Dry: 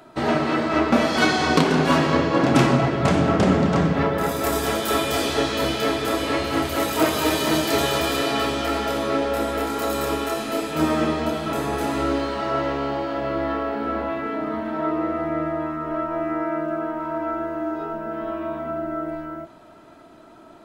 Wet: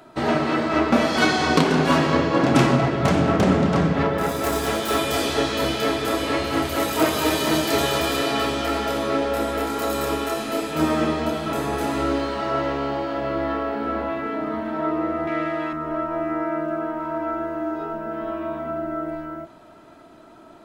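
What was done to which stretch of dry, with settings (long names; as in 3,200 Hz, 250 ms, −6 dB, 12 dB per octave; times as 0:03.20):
0:02.70–0:04.97: phase distortion by the signal itself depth 0.089 ms
0:15.27–0:15.73: meter weighting curve D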